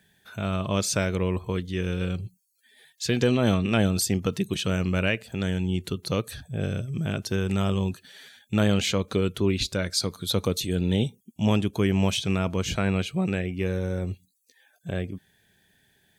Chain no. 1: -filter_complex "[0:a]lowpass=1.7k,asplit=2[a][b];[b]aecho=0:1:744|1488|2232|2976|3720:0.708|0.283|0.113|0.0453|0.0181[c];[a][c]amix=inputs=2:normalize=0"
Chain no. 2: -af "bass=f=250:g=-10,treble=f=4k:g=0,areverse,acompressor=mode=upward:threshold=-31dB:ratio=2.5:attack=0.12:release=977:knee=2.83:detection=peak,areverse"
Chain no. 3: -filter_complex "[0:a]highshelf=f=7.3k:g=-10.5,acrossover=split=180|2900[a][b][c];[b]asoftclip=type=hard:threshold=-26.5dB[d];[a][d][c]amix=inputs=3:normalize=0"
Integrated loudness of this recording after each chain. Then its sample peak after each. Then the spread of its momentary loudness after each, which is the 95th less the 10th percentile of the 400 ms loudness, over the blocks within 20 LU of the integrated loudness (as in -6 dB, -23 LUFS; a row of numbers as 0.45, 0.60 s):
-26.0, -29.5, -28.5 LUFS; -9.5, -9.0, -14.5 dBFS; 8, 15, 8 LU